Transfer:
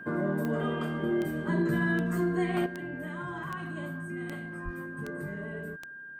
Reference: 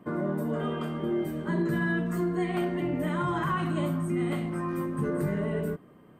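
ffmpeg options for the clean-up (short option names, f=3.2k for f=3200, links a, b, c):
-filter_complex "[0:a]adeclick=t=4,bandreject=f=1.6k:w=30,asplit=3[a][b][c];[a]afade=t=out:st=4.64:d=0.02[d];[b]highpass=f=140:w=0.5412,highpass=f=140:w=1.3066,afade=t=in:st=4.64:d=0.02,afade=t=out:st=4.76:d=0.02[e];[c]afade=t=in:st=4.76:d=0.02[f];[d][e][f]amix=inputs=3:normalize=0,asetnsamples=n=441:p=0,asendcmd='2.66 volume volume 9.5dB',volume=0dB"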